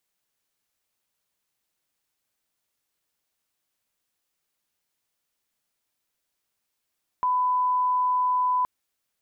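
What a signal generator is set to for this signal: line-up tone -20 dBFS 1.42 s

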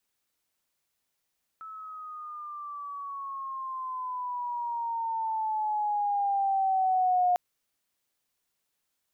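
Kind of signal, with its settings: gliding synth tone sine, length 5.75 s, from 1.31 kHz, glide -10.5 st, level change +19 dB, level -20.5 dB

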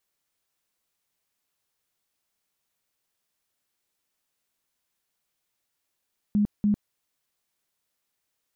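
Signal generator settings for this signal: tone bursts 207 Hz, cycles 21, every 0.29 s, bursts 2, -18.5 dBFS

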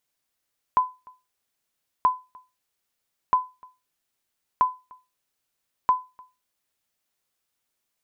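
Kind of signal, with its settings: sonar ping 1.01 kHz, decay 0.26 s, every 1.28 s, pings 5, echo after 0.30 s, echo -27.5 dB -11 dBFS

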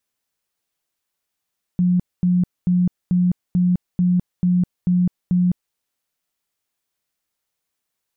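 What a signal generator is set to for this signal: tone bursts 179 Hz, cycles 37, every 0.44 s, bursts 9, -13.5 dBFS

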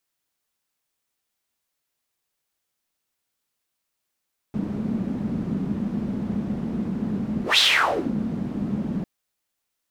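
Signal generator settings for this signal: whoosh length 4.50 s, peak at 3.04 s, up 0.15 s, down 0.58 s, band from 210 Hz, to 3.7 kHz, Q 5.1, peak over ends 10 dB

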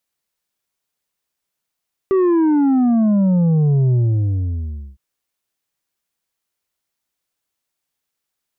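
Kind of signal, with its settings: sub drop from 390 Hz, over 2.86 s, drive 5.5 dB, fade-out 1.04 s, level -12.5 dB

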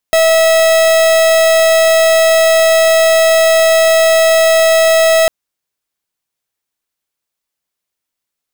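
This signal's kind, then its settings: pulse 649 Hz, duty 44% -9 dBFS 5.15 s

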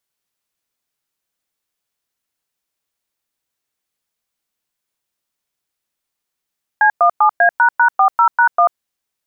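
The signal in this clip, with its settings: DTMF "C17A##40#1", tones 90 ms, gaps 107 ms, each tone -10.5 dBFS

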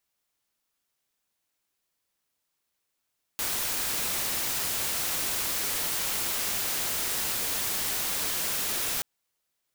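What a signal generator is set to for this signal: noise white, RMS -29.5 dBFS 5.63 s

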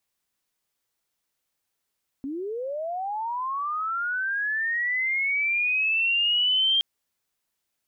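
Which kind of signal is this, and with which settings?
sweep linear 260 Hz -> 3.2 kHz -29 dBFS -> -18.5 dBFS 4.57 s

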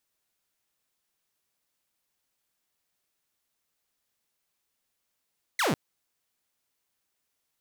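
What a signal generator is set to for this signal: laser zap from 2.2 kHz, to 120 Hz, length 0.15 s saw, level -20.5 dB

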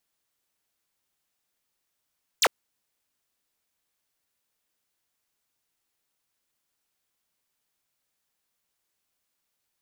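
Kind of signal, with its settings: laser zap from 8.7 kHz, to 360 Hz, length 0.05 s square, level -19 dB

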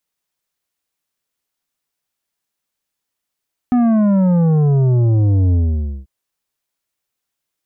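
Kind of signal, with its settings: sub drop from 250 Hz, over 2.34 s, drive 9 dB, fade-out 0.53 s, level -11.5 dB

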